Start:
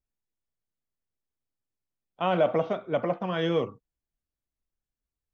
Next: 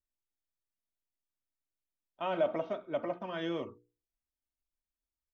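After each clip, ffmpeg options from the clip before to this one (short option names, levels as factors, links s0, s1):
-af "bandreject=f=60:t=h:w=6,bandreject=f=120:t=h:w=6,bandreject=f=180:t=h:w=6,bandreject=f=240:t=h:w=6,bandreject=f=300:t=h:w=6,bandreject=f=360:t=h:w=6,bandreject=f=420:t=h:w=6,bandreject=f=480:t=h:w=6,aecho=1:1:3.2:0.46,volume=0.376"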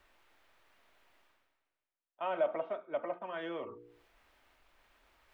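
-filter_complex "[0:a]acrossover=split=410 3000:gain=0.224 1 0.0794[s0][s1][s2];[s0][s1][s2]amix=inputs=3:normalize=0,areverse,acompressor=mode=upward:threshold=0.01:ratio=2.5,areverse"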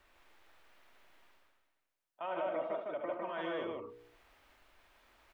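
-filter_complex "[0:a]alimiter=level_in=2.24:limit=0.0631:level=0:latency=1:release=30,volume=0.447,asplit=2[s0][s1];[s1]aecho=0:1:72.89|154.5:0.447|0.794[s2];[s0][s2]amix=inputs=2:normalize=0"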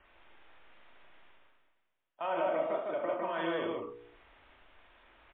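-filter_complex "[0:a]asplit=2[s0][s1];[s1]adelay=36,volume=0.447[s2];[s0][s2]amix=inputs=2:normalize=0,volume=1.68" -ar 8000 -c:a libmp3lame -b:a 24k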